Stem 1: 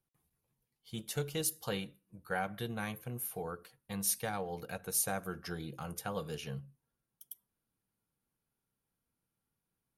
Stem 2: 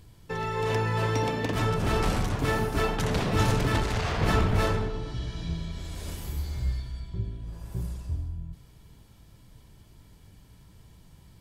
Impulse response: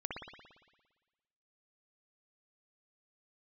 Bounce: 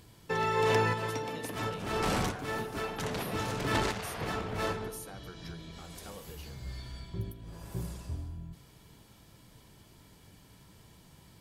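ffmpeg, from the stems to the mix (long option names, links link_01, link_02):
-filter_complex "[0:a]alimiter=level_in=3dB:limit=-24dB:level=0:latency=1,volume=-3dB,volume=-8dB,asplit=2[link_01][link_02];[1:a]lowshelf=frequency=120:gain=-8.5,volume=2.5dB[link_03];[link_02]apad=whole_len=503131[link_04];[link_03][link_04]sidechaincompress=threshold=-53dB:ratio=6:attack=16:release=455[link_05];[link_01][link_05]amix=inputs=2:normalize=0,lowshelf=frequency=82:gain=-6.5"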